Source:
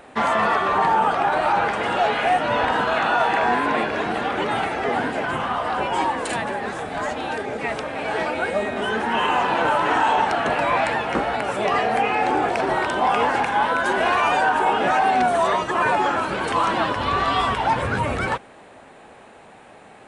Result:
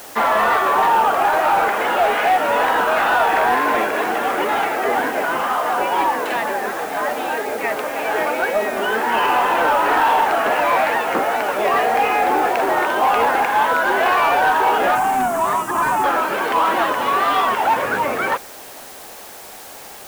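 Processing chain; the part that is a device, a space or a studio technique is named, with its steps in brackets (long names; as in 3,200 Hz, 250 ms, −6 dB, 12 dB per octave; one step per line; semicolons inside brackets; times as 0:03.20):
tape answering machine (band-pass filter 330–2,800 Hz; soft clipping −14 dBFS, distortion −19 dB; tape wow and flutter; white noise bed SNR 21 dB)
0:14.95–0:16.04: octave-band graphic EQ 125/250/500/1,000/2,000/4,000/8,000 Hz +6/+5/−12/+3/−5/−8/+8 dB
level +5.5 dB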